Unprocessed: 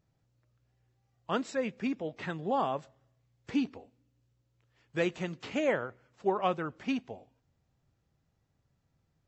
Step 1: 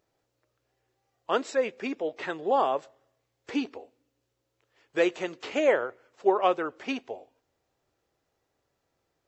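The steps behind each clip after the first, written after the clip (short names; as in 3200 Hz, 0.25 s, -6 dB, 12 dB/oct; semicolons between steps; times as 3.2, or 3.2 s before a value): resonant low shelf 260 Hz -13 dB, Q 1.5; gain +4.5 dB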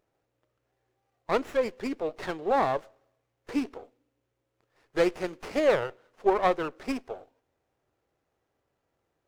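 running maximum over 9 samples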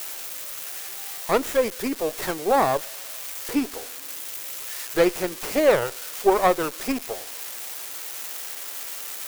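switching spikes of -26 dBFS; gain +5 dB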